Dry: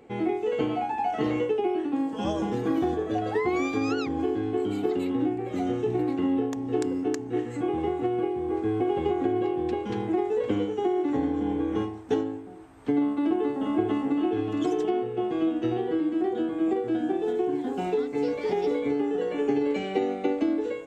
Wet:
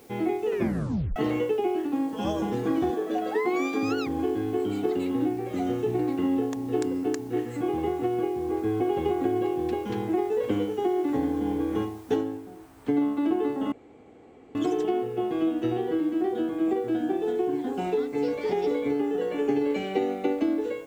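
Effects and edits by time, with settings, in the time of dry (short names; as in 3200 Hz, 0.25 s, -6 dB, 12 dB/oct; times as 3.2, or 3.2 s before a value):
0.47 tape stop 0.69 s
2.9–3.83 HPF 200 Hz 24 dB/oct
12.16 noise floor step -59 dB -65 dB
13.72–14.55 room tone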